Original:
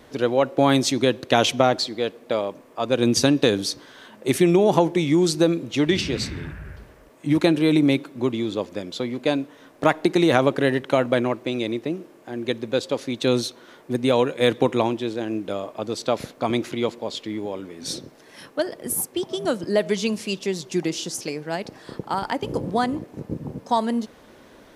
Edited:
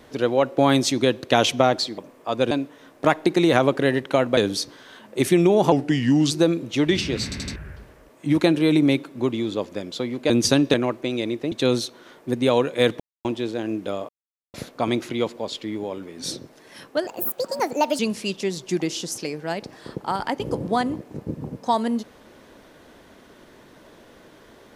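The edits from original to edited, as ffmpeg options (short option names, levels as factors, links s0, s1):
-filter_complex "[0:a]asplit=19[s0][s1][s2][s3][s4][s5][s6][s7][s8][s9][s10][s11][s12][s13][s14][s15][s16][s17][s18];[s0]atrim=end=1.982[s19];[s1]atrim=start=2.488:end=3.022[s20];[s2]atrim=start=9.298:end=11.162[s21];[s3]atrim=start=3.458:end=4.814[s22];[s4]atrim=start=4.81:end=5.31,asetpts=PTS-STARTPTS,asetrate=37485,aresample=44100,atrim=end_sample=25941,asetpts=PTS-STARTPTS[s23];[s5]atrim=start=5.306:end=6.322[s24];[s6]atrim=start=6.238:end=6.322[s25];[s7]atrim=start=6.238:end=6.322[s26];[s8]atrim=start=6.238:end=6.322[s27];[s9]atrim=start=6.558:end=9.302[s28];[s10]atrim=start=3.018:end=3.462[s29];[s11]atrim=start=11.158:end=11.942[s30];[s12]atrim=start=13.138:end=14.62,asetpts=PTS-STARTPTS,afade=t=out:st=1.478:d=0.004:c=hsin[s31];[s13]atrim=start=14.62:end=14.87,asetpts=PTS-STARTPTS,volume=0[s32];[s14]atrim=start=14.87:end=15.71,asetpts=PTS-STARTPTS,afade=t=in:d=0.004:c=hsin,afade=t=out:st=0.836:d=0.004:c=hsin[s33];[s15]atrim=start=15.71:end=16.16,asetpts=PTS-STARTPTS,volume=0[s34];[s16]atrim=start=16.16:end=18.694,asetpts=PTS-STARTPTS,afade=t=in:d=0.004:c=hsin[s35];[s17]atrim=start=18.69:end=20.02,asetpts=PTS-STARTPTS,asetrate=63504,aresample=44100,atrim=end_sample=40731,asetpts=PTS-STARTPTS[s36];[s18]atrim=start=20.016[s37];[s19][s20]acrossfade=d=0.004:c1=hsin:c2=hsin[s38];[s38][s21]acrossfade=d=0.004:c1=hsin:c2=hsin[s39];[s39][s22]acrossfade=d=0.004:c1=hsin:c2=hsin[s40];[s40][s23]acrossfade=d=0.004:c1=hsin:c2=hsin[s41];[s41][s24]acrossfade=d=0.004:c1=hsin:c2=hsin[s42];[s42][s25]acrossfade=d=0.004:c1=hsin:c2=hsin[s43];[s43][s26]acrossfade=d=0.004:c1=hsin:c2=hsin[s44];[s44][s27]acrossfade=d=0.004:c1=hsin:c2=hsin[s45];[s45][s28]acrossfade=d=0.004:c1=hsin:c2=hsin[s46];[s46][s29]acrossfade=d=0.004:c1=hsin:c2=hsin[s47];[s47][s30]acrossfade=d=0.004:c1=hsin:c2=hsin[s48];[s31][s32][s33][s34][s35]concat=n=5:v=0:a=1[s49];[s48][s49]acrossfade=d=0.004:c1=hsin:c2=hsin[s50];[s50][s36]acrossfade=d=0.004:c1=hsin:c2=hsin[s51];[s51][s37]acrossfade=d=0.004:c1=hsin:c2=hsin"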